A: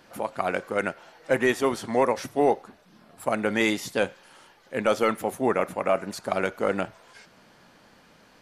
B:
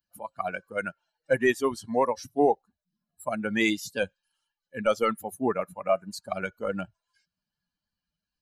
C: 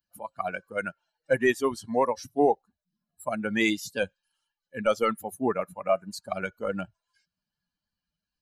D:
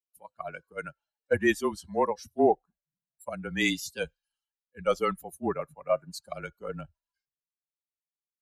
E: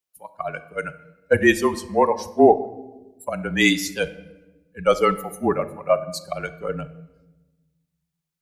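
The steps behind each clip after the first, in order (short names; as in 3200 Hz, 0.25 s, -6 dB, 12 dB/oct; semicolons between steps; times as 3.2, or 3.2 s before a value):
per-bin expansion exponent 2; gain +2 dB
nothing audible
frequency shift -28 Hz; three-band expander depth 70%; gain -4 dB
reverb RT60 1.1 s, pre-delay 7 ms, DRR 12 dB; gain +8.5 dB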